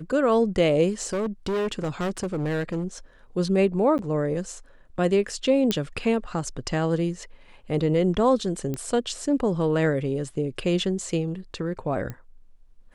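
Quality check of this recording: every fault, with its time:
1.02–2.84 clipped -23 dBFS
3.98–3.99 gap 9.8 ms
5.71 pop -9 dBFS
8.74 pop -17 dBFS
12.1 pop -21 dBFS

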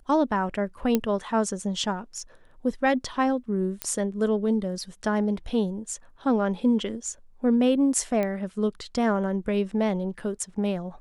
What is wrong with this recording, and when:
0.95 pop -9 dBFS
3.82 pop -10 dBFS
8.23 pop -16 dBFS

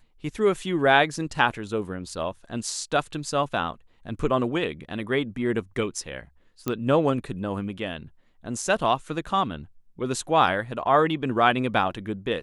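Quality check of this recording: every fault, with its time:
6.68 pop -12 dBFS

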